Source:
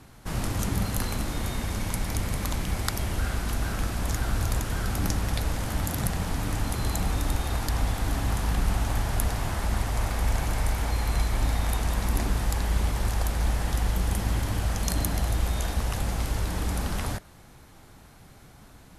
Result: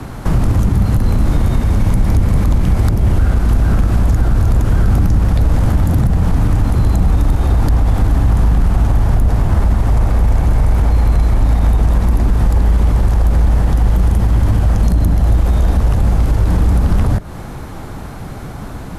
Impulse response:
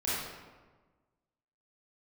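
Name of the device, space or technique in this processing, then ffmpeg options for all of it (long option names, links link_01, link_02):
mastering chain: -filter_complex "[0:a]equalizer=frequency=1200:width_type=o:width=0.77:gain=2,acrossover=split=180|570[link_01][link_02][link_03];[link_01]acompressor=threshold=-25dB:ratio=4[link_04];[link_02]acompressor=threshold=-44dB:ratio=4[link_05];[link_03]acompressor=threshold=-44dB:ratio=4[link_06];[link_04][link_05][link_06]amix=inputs=3:normalize=0,acompressor=threshold=-35dB:ratio=1.5,asoftclip=type=tanh:threshold=-22.5dB,tiltshelf=frequency=1500:gain=5.5,alimiter=level_in=22.5dB:limit=-1dB:release=50:level=0:latency=1,volume=-4dB"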